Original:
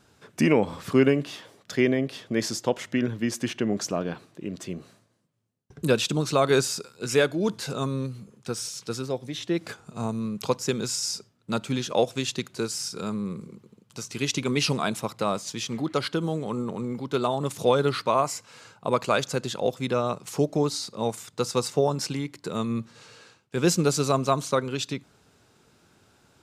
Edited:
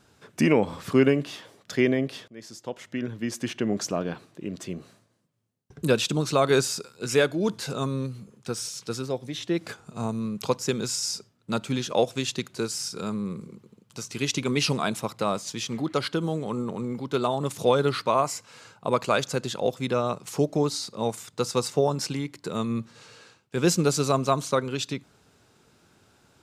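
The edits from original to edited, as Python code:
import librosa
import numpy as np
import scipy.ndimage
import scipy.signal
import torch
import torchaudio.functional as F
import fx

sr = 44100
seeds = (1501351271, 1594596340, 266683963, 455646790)

y = fx.edit(x, sr, fx.fade_in_from(start_s=2.28, length_s=1.45, floor_db=-24.0), tone=tone)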